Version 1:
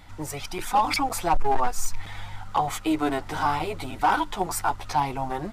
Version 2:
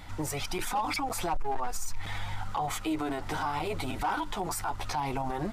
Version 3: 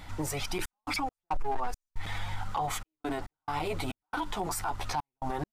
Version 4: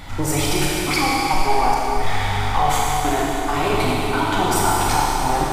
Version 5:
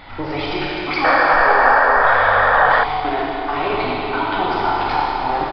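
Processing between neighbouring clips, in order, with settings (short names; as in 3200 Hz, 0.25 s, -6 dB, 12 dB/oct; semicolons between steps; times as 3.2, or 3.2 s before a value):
in parallel at -2 dB: compressor, threshold -29 dBFS, peak gain reduction 12.5 dB; on the sum: limiter -21.5 dBFS, peak gain reduction 10.5 dB; gain -2 dB
step gate "xxx.x.xx.x" 69 bpm -60 dB
Schroeder reverb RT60 3.8 s, combs from 28 ms, DRR -5.5 dB; gain +9 dB
painted sound noise, 1.04–2.84, 460–1900 Hz -15 dBFS; downsampling 11025 Hz; tone controls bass -10 dB, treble -9 dB; gain +1 dB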